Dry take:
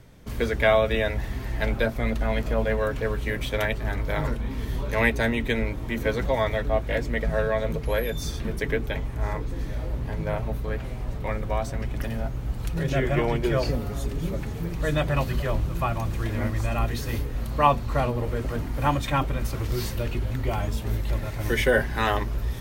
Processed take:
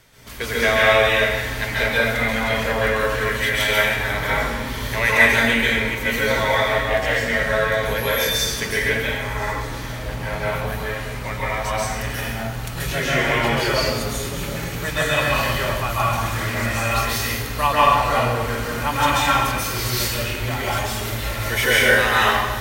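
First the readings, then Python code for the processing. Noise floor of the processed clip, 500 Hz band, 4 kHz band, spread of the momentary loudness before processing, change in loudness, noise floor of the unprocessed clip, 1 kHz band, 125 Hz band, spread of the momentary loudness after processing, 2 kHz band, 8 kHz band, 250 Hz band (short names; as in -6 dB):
-29 dBFS, +4.0 dB, +13.5 dB, 9 LU, +7.0 dB, -33 dBFS, +8.5 dB, +0.5 dB, 11 LU, +12.0 dB, +15.0 dB, +1.5 dB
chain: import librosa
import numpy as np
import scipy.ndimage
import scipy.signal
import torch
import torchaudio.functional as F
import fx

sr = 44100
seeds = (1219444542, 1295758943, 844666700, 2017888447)

p1 = fx.tilt_shelf(x, sr, db=-8.5, hz=670.0)
p2 = 10.0 ** (-20.0 / 20.0) * np.tanh(p1 / 10.0 ** (-20.0 / 20.0))
p3 = p1 + (p2 * librosa.db_to_amplitude(-4.0))
p4 = fx.rev_plate(p3, sr, seeds[0], rt60_s=1.2, hf_ratio=0.85, predelay_ms=120, drr_db=-7.5)
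y = p4 * librosa.db_to_amplitude(-5.5)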